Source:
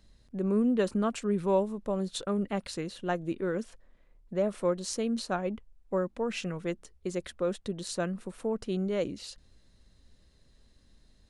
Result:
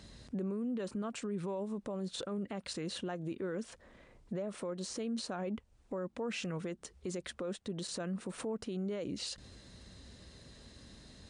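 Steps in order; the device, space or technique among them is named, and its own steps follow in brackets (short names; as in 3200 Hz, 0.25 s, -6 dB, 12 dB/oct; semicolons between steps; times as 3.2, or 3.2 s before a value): podcast mastering chain (HPF 75 Hz 12 dB/oct; de-esser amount 95%; compressor 4:1, threshold -45 dBFS, peak gain reduction 20 dB; limiter -42.5 dBFS, peak gain reduction 10.5 dB; gain +12.5 dB; MP3 96 kbps 22050 Hz)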